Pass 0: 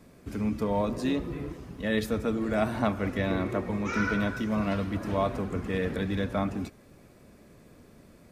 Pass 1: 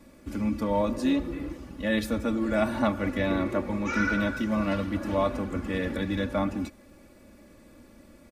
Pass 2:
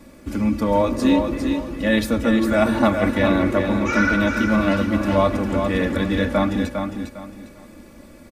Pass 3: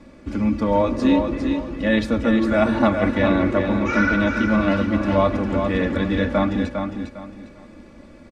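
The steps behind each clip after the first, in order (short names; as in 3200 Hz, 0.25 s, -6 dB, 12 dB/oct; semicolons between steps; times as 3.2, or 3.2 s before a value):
comb 3.5 ms, depth 65%
feedback echo 0.404 s, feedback 28%, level -6 dB; gain +7.5 dB
air absorption 98 m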